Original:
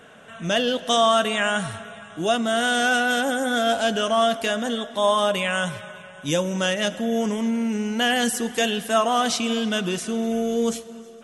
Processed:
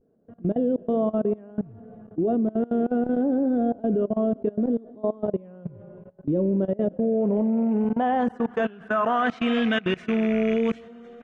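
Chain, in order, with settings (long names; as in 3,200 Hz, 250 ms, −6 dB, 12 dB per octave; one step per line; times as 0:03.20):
loose part that buzzes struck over −31 dBFS, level −26 dBFS
low-shelf EQ 350 Hz +5 dB
pitch vibrato 0.65 Hz 62 cents
low-pass filter sweep 380 Hz → 2,100 Hz, 0:06.56–0:09.59
output level in coarse steps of 22 dB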